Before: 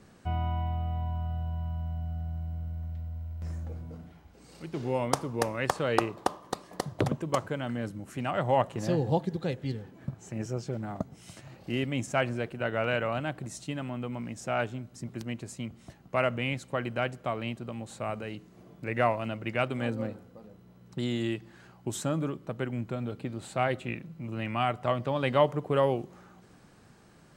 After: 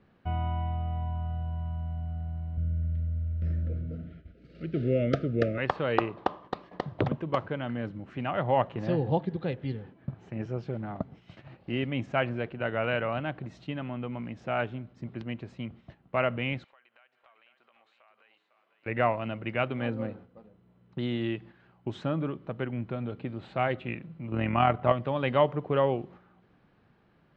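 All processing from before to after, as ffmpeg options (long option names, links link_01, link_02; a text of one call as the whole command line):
ffmpeg -i in.wav -filter_complex "[0:a]asettb=1/sr,asplit=3[link_01][link_02][link_03];[link_01]atrim=end=2.574[link_04];[link_02]atrim=start=2.57:end=5.58,asetpts=PTS-STARTPTS,afade=type=in:duration=0.004:curve=qsin,afade=type=out:start_time=3.006:duration=0.004:curve=qsin,asuperstop=centerf=920:order=20:qfactor=1.7,lowshelf=frequency=480:gain=7[link_05];[link_03]atrim=start=5.576[link_06];[link_04][link_05]acrossfade=duration=0.004:curve1=hsin:curve2=qsin[link_07];[link_07][link_06]acrossfade=duration=0.004:curve1=qsin:curve2=hsin,asettb=1/sr,asplit=3[link_08][link_09][link_10];[link_08]atrim=end=16.644[link_11];[link_09]atrim=start=16.64:end=18.86,asetpts=PTS-STARTPTS,afade=type=in:duration=0.004:curve=qsin,afade=type=out:start_time=2.216:duration=0.004:curve=qsin,highpass=1100,acompressor=threshold=-52dB:ratio=5:attack=3.2:release=140:knee=1:detection=peak,aecho=1:1:503:0.398,atrim=end_sample=97902[link_12];[link_10]atrim=start=18.856[link_13];[link_11][link_12]acrossfade=duration=0.004:curve1=hsin:curve2=qsin[link_14];[link_14][link_13]acrossfade=duration=0.004:curve1=qsin:curve2=hsin,asettb=1/sr,asplit=3[link_15][link_16][link_17];[link_15]atrim=end=24.324[link_18];[link_16]atrim=start=24.32:end=24.92,asetpts=PTS-STARTPTS,afade=type=in:duration=0.004:curve=qsin,afade=type=out:start_time=0.596:duration=0.004:curve=qsin,aemphasis=mode=reproduction:type=75fm,acontrast=83,tremolo=f=42:d=0.519[link_19];[link_17]atrim=start=24.916[link_20];[link_18][link_19]acrossfade=duration=0.004:curve1=hsin:curve2=qsin[link_21];[link_21][link_20]acrossfade=duration=0.004:curve1=qsin:curve2=hsin,agate=range=-7dB:threshold=-48dB:ratio=16:detection=peak,lowpass=frequency=3500:width=0.5412,lowpass=frequency=3500:width=1.3066" out.wav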